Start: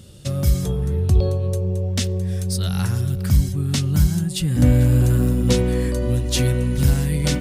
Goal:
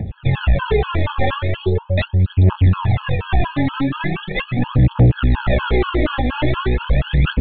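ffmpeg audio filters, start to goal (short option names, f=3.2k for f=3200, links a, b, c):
-filter_complex "[0:a]asplit=3[a][b][c];[a]afade=t=out:st=3.74:d=0.02[d];[b]highpass=f=140:w=0.5412,highpass=f=140:w=1.3066,afade=t=in:st=3.74:d=0.02,afade=t=out:st=4.78:d=0.02[e];[c]afade=t=in:st=4.78:d=0.02[f];[d][e][f]amix=inputs=3:normalize=0,alimiter=limit=-13dB:level=0:latency=1:release=24,acrusher=samples=29:mix=1:aa=0.000001:lfo=1:lforange=46.4:lforate=0.38,aeval=exprs='0.224*(cos(1*acos(clip(val(0)/0.224,-1,1)))-cos(1*PI/2))+0.0562*(cos(2*acos(clip(val(0)/0.224,-1,1)))-cos(2*PI/2))+0.0126*(cos(4*acos(clip(val(0)/0.224,-1,1)))-cos(4*PI/2))':c=same,aphaser=in_gain=1:out_gain=1:delay=3.9:decay=0.8:speed=0.4:type=triangular,asoftclip=type=tanh:threshold=-14dB,aresample=8000,aresample=44100,afftfilt=real='re*gt(sin(2*PI*4.2*pts/sr)*(1-2*mod(floor(b*sr/1024/840),2)),0)':imag='im*gt(sin(2*PI*4.2*pts/sr)*(1-2*mod(floor(b*sr/1024/840),2)),0)':win_size=1024:overlap=0.75,volume=7dB"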